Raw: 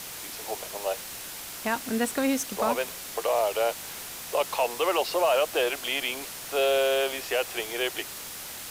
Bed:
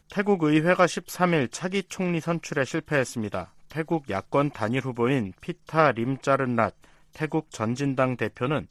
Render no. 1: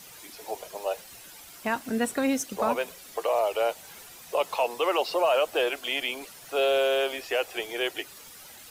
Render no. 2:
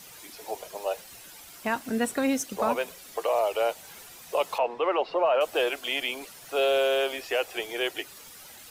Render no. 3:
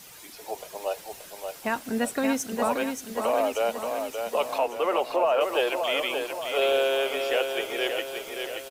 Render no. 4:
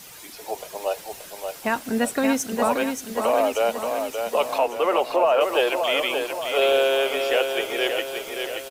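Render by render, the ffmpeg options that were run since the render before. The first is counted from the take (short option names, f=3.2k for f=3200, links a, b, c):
-af "afftdn=nr=11:nf=-39"
-filter_complex "[0:a]asettb=1/sr,asplit=3[a][b][c];[a]atrim=end=4.584[d];[b]atrim=start=4.58:end=5.41,asetpts=PTS-STARTPTS,afade=t=in:d=0.004:c=qsin,afade=t=out:st=0.826:d=0.004:c=qsin,lowpass=2.2k[e];[c]atrim=start=5.406[f];[d][e]acrossfade=d=0.004:c1=hsin:c2=qsin[g];[g][f]acrossfade=d=0.004:c1=qsin:c2=hsin"
-af "aecho=1:1:578|1156|1734|2312|2890|3468|4046:0.501|0.266|0.141|0.0746|0.0395|0.021|0.0111"
-af "volume=4dB"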